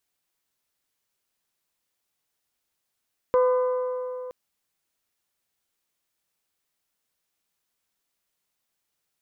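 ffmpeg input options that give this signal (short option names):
-f lavfi -i "aevalsrc='0.158*pow(10,-3*t/3.28)*sin(2*PI*504*t)+0.0596*pow(10,-3*t/2.664)*sin(2*PI*1008*t)+0.0224*pow(10,-3*t/2.522)*sin(2*PI*1209.6*t)+0.00841*pow(10,-3*t/2.359)*sin(2*PI*1512*t)+0.00316*pow(10,-3*t/2.164)*sin(2*PI*2016*t)':d=0.97:s=44100"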